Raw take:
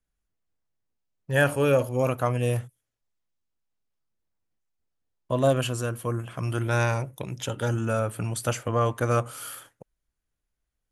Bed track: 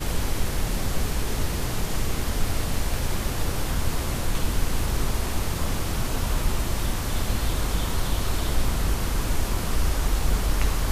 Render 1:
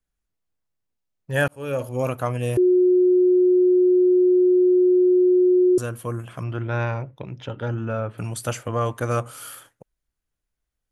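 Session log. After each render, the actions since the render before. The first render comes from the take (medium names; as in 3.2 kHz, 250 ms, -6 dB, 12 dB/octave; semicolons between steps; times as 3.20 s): 1.48–1.94 s: fade in; 2.57–5.78 s: bleep 363 Hz -13 dBFS; 6.43–8.18 s: distance through air 270 m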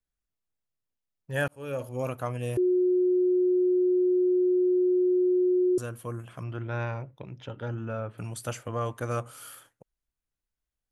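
trim -7 dB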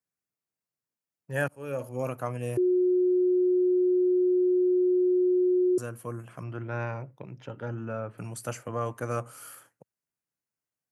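high-pass 110 Hz 24 dB/octave; peaking EQ 3.5 kHz -10 dB 0.42 oct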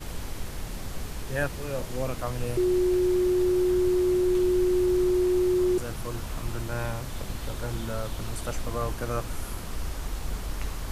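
add bed track -9.5 dB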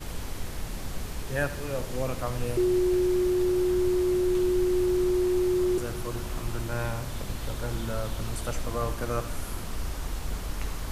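two-band feedback delay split 330 Hz, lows 223 ms, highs 83 ms, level -14 dB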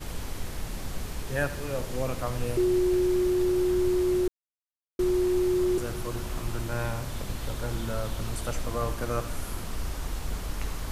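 4.28–4.99 s: mute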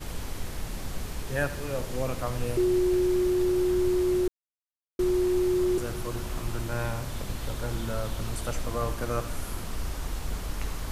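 no audible change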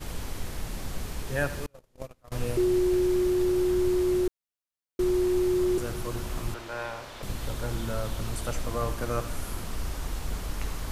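1.66–2.32 s: gate -26 dBFS, range -35 dB; 6.54–7.23 s: three-band isolator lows -16 dB, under 360 Hz, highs -12 dB, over 5.5 kHz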